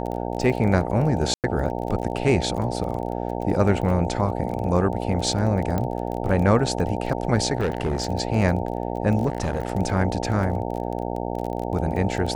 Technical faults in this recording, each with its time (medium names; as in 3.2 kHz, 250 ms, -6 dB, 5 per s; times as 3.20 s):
buzz 60 Hz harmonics 15 -28 dBFS
crackle 24 per s -29 dBFS
1.34–1.44 s: dropout 98 ms
5.78 s: pop -13 dBFS
7.57–8.08 s: clipped -18.5 dBFS
9.26–9.72 s: clipped -18.5 dBFS